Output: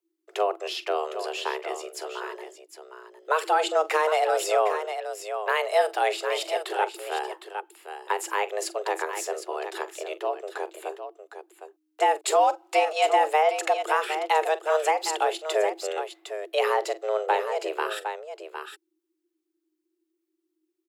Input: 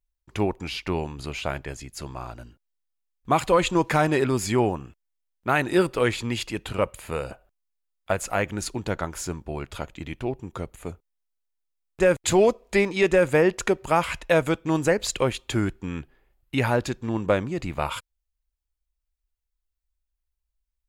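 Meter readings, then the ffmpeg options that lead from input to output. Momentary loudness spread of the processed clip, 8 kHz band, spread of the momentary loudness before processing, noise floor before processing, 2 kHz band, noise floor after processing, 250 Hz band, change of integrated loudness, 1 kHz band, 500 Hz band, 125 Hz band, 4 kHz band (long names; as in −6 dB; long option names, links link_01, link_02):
15 LU, −1.5 dB, 16 LU, −81 dBFS, −1.5 dB, −79 dBFS, −16.5 dB, −1.5 dB, +5.0 dB, −1.5 dB, below −40 dB, +1.0 dB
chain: -filter_complex "[0:a]aecho=1:1:44|759:0.15|0.316,acrossover=split=380[link_01][link_02];[link_02]acompressor=threshold=-29dB:ratio=1.5[link_03];[link_01][link_03]amix=inputs=2:normalize=0,afreqshift=310"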